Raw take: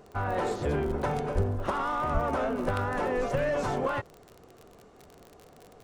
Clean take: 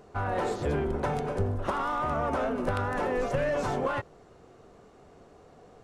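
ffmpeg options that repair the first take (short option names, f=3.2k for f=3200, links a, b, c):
-filter_complex "[0:a]adeclick=t=4,asplit=3[a][b][c];[a]afade=t=out:st=1.34:d=0.02[d];[b]highpass=f=140:w=0.5412,highpass=f=140:w=1.3066,afade=t=in:st=1.34:d=0.02,afade=t=out:st=1.46:d=0.02[e];[c]afade=t=in:st=1.46:d=0.02[f];[d][e][f]amix=inputs=3:normalize=0,asplit=3[g][h][i];[g]afade=t=out:st=2.13:d=0.02[j];[h]highpass=f=140:w=0.5412,highpass=f=140:w=1.3066,afade=t=in:st=2.13:d=0.02,afade=t=out:st=2.25:d=0.02[k];[i]afade=t=in:st=2.25:d=0.02[l];[j][k][l]amix=inputs=3:normalize=0"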